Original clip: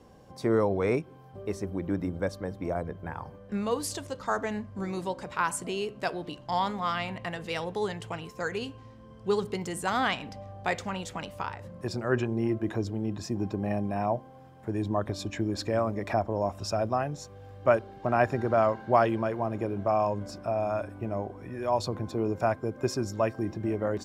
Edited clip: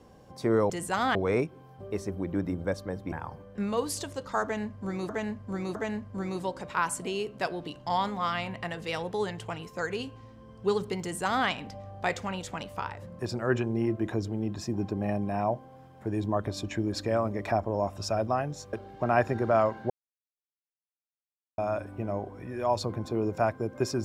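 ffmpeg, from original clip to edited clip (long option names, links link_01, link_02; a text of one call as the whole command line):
ffmpeg -i in.wav -filter_complex "[0:a]asplit=9[link_01][link_02][link_03][link_04][link_05][link_06][link_07][link_08][link_09];[link_01]atrim=end=0.702[link_10];[link_02]atrim=start=9.638:end=10.092[link_11];[link_03]atrim=start=0.698:end=2.672[link_12];[link_04]atrim=start=3.058:end=5.032[link_13];[link_05]atrim=start=4.368:end=5.032[link_14];[link_06]atrim=start=4.368:end=17.352[link_15];[link_07]atrim=start=17.758:end=18.93,asetpts=PTS-STARTPTS,afade=type=out:start_time=1.168:duration=0.004:curve=hsin[link_16];[link_08]atrim=start=18.93:end=20.61,asetpts=PTS-STARTPTS,volume=0[link_17];[link_09]atrim=start=20.61,asetpts=PTS-STARTPTS,afade=type=in:duration=0.004:curve=hsin[link_18];[link_10][link_11]acrossfade=duration=0.004:curve1=hsin:curve2=hsin[link_19];[link_19][link_12]acrossfade=duration=0.004:curve1=hsin:curve2=hsin[link_20];[link_20][link_13]acrossfade=duration=0.004:curve1=hsin:curve2=hsin[link_21];[link_21][link_14]acrossfade=duration=0.004:curve1=hsin:curve2=hsin[link_22];[link_22][link_15]acrossfade=duration=0.004:curve1=hsin:curve2=hsin[link_23];[link_16][link_17][link_18]concat=n=3:v=0:a=1[link_24];[link_23][link_24]acrossfade=duration=0.004:curve1=hsin:curve2=hsin" out.wav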